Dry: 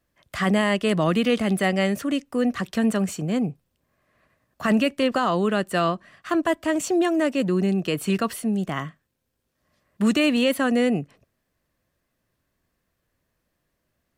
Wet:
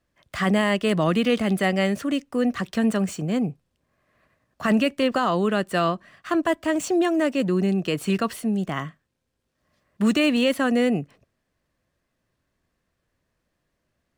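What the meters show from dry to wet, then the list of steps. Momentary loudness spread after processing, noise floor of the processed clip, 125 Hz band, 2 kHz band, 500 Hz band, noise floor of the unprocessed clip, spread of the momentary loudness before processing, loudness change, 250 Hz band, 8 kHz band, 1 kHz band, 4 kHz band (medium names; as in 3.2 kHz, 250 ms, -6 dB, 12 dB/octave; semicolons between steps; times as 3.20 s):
6 LU, -77 dBFS, 0.0 dB, 0.0 dB, 0.0 dB, -76 dBFS, 6 LU, 0.0 dB, 0.0 dB, -2.0 dB, 0.0 dB, 0.0 dB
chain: median filter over 3 samples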